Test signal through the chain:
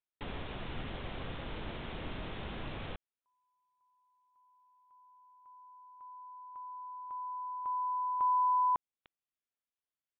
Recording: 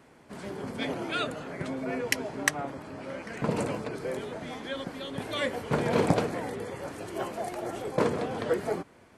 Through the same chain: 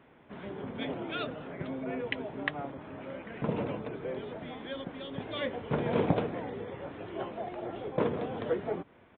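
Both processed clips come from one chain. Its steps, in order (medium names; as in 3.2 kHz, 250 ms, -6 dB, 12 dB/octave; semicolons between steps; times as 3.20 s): dynamic bell 1.7 kHz, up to -4 dB, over -44 dBFS, Q 0.71; resampled via 8 kHz; trim -2.5 dB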